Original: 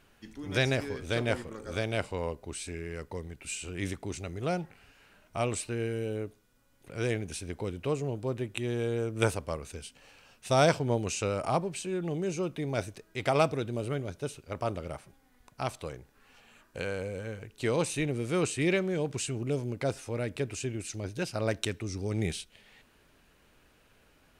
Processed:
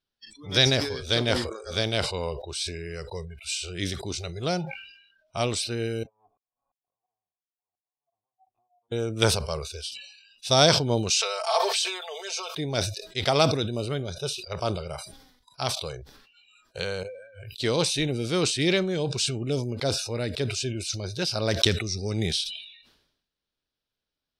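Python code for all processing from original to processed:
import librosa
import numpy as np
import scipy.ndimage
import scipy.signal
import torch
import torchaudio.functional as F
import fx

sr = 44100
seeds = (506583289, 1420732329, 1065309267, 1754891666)

y = fx.chain(x, sr, fx.tube_stage(drive_db=45.0, bias=0.55),
    fx.formant_cascade(vowel='a'),
    fx.tremolo_decay(direction='swelling', hz=2.9, depth_db=34), at=(6.03, 8.92))
y = fx.chain(y, sr, fx.highpass(hz=610.0, slope=24),
    fx.comb(ms=4.5, depth=0.91),
    fx.sustainer(db_per_s=46.0), at=(11.1, 12.55))
y = fx.chain(y, sr, fx.over_compress(threshold_db=-48.0, ratio=-1.0),
    fx.notch(hz=7500.0, q=22.0), at=(17.03, 17.53))
y = fx.noise_reduce_blind(y, sr, reduce_db=30)
y = fx.band_shelf(y, sr, hz=4300.0, db=12.0, octaves=1.0)
y = fx.sustainer(y, sr, db_per_s=68.0)
y = y * 10.0 ** (3.0 / 20.0)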